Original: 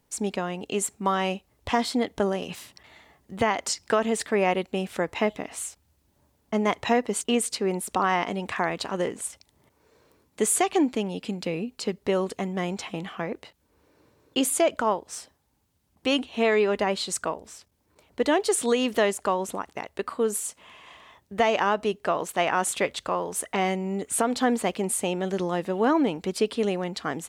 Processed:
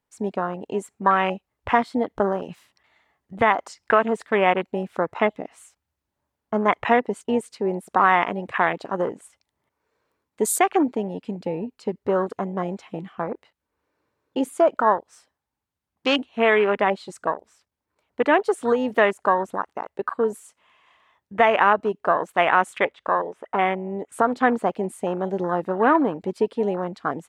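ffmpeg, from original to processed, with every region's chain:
-filter_complex "[0:a]asettb=1/sr,asplit=3[a][b][c];[a]atrim=end=22.784[d];[b]atrim=start=22.78:end=24.12,asetpts=PTS-STARTPTS,afade=t=in:d=0.004:c=qsin,afade=t=out:st=1.336:d=0.004:c=qsin,bandreject=f=4.3k:w=8.8,acrossover=split=4500[e][f];[f]acompressor=threshold=-50dB:ratio=4:attack=1:release=60[g];[e][g]amix=inputs=2:normalize=0,bass=f=250:g=-4,treble=f=4k:g=-6[h];[c]atrim=start=24.116[i];[d][h]acrossfade=d=0.004:c1=hsin:c2=qsin[j];[j][i]acrossfade=d=0.004:c1=qsin:c2=hsin,afwtdn=0.0316,equalizer=f=1.4k:t=o:w=2.4:g=8.5"

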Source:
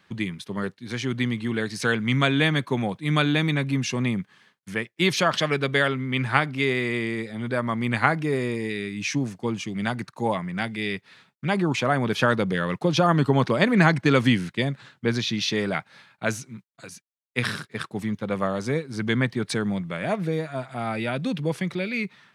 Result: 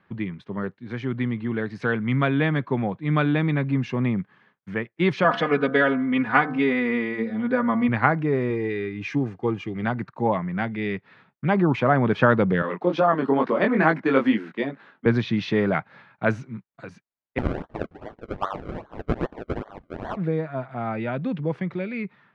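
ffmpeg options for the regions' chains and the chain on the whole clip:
-filter_complex "[0:a]asettb=1/sr,asplit=3[a][b][c];[a]atrim=end=5.244[d];[b]atrim=start=5.24:end=7.89,asetpts=PTS-STARTPTS,afade=t=in:d=0.004:c=qsin,afade=t=out:st=2.646:d=0.004:c=qsin,aecho=1:1:4.1:0.89,atrim=end_sample=116865,bandreject=f=76.39:t=h:w=4,bandreject=f=152.78:t=h:w=4,bandreject=f=229.17:t=h:w=4,bandreject=f=305.56:t=h:w=4,bandreject=f=381.95:t=h:w=4,bandreject=f=458.34:t=h:w=4,bandreject=f=534.73:t=h:w=4,bandreject=f=611.12:t=h:w=4,bandreject=f=687.51:t=h:w=4,bandreject=f=763.9:t=h:w=4,bandreject=f=840.29:t=h:w=4,bandreject=f=916.68:t=h:w=4,bandreject=f=993.07:t=h:w=4,bandreject=f=1.06946k:t=h:w=4,bandreject=f=1.14585k:t=h:w=4,bandreject=f=1.22224k:t=h:w=4,bandreject=f=1.29863k:t=h:w=4,bandreject=f=1.37502k:t=h:w=4,bandreject=f=1.45141k:t=h:w=4,bandreject=f=1.5278k:t=h:w=4,bandreject=f=1.60419k:t=h:w=4,bandreject=f=1.68058k:t=h:w=4,bandreject=f=1.75697k:t=h:w=4,bandreject=f=1.83336k:t=h:w=4[e];[c]atrim=start=7.886[f];[d][e]acrossfade=d=0.004:c1=hsin:c2=qsin[g];[g][f]acrossfade=d=0.004:c1=qsin:c2=hsin,asettb=1/sr,asplit=3[h][i][j];[h]atrim=end=8.504[k];[i]atrim=start=8.5:end=9.84,asetpts=PTS-STARTPTS,afade=t=in:d=0.004:c=qsin,afade=t=out:st=1.336:d=0.004:c=qsin,aecho=1:1:2.5:0.45,atrim=end_sample=59094,acrusher=bits=9:mode=log:mix=0:aa=0.000001[l];[j]atrim=start=9.836[m];[k][l]acrossfade=d=0.004:c1=hsin:c2=qsin[n];[n][m]acrossfade=d=0.004:c1=qsin:c2=hsin,asettb=1/sr,asplit=3[o][p][q];[o]atrim=end=12.624[r];[p]atrim=start=12.62:end=15.06,asetpts=PTS-STARTPTS,afade=t=in:d=0.004:c=qsin,afade=t=out:st=2.436:d=0.004:c=qsin,highpass=f=220:w=0.5412,highpass=f=220:w=1.3066,flanger=delay=18.5:depth=4.4:speed=2.3[s];[q]atrim=start=15.056[t];[r][s]acrossfade=d=0.004:c1=hsin:c2=qsin[u];[u][t]acrossfade=d=0.004:c1=qsin:c2=hsin,asettb=1/sr,asplit=3[v][w][x];[v]atrim=end=17.384[y];[w]atrim=start=17.38:end=20.17,asetpts=PTS-STARTPTS,afade=t=in:d=0.004:c=qsin,afade=t=out:st=2.786:d=0.004:c=qsin,highpass=f=910:w=0.5412,highpass=f=910:w=1.3066,acrusher=samples=34:mix=1:aa=0.000001:lfo=1:lforange=34:lforate=2.5[z];[x]atrim=start=20.166[aa];[y][z]acrossfade=d=0.004:c1=hsin:c2=qsin[ab];[ab][aa]acrossfade=d=0.004:c1=qsin:c2=hsin,lowpass=1.7k,dynaudnorm=f=510:g=13:m=6dB"

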